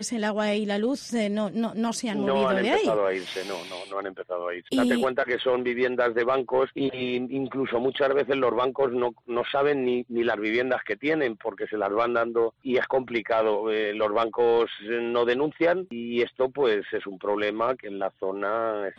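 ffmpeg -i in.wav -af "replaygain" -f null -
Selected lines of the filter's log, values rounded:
track_gain = +6.1 dB
track_peak = 0.147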